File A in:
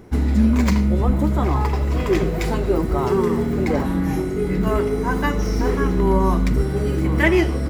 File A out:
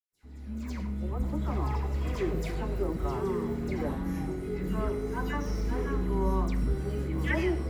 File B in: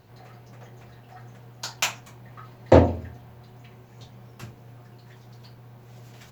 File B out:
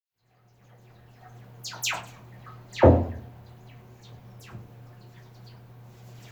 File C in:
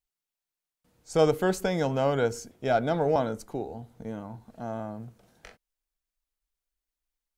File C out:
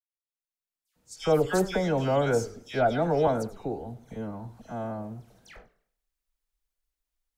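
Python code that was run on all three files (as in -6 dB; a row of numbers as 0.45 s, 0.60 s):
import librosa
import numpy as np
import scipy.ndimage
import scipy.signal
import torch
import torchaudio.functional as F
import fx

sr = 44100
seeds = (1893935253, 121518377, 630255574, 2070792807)

y = fx.fade_in_head(x, sr, length_s=1.5)
y = fx.low_shelf(y, sr, hz=63.0, db=5.5)
y = fx.dispersion(y, sr, late='lows', ms=117.0, hz=2200.0)
y = fx.echo_warbled(y, sr, ms=101, feedback_pct=32, rate_hz=2.8, cents=183, wet_db=-18.0)
y = y * 10.0 ** (-30 / 20.0) / np.sqrt(np.mean(np.square(y)))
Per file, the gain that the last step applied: -12.0 dB, -2.0 dB, +0.5 dB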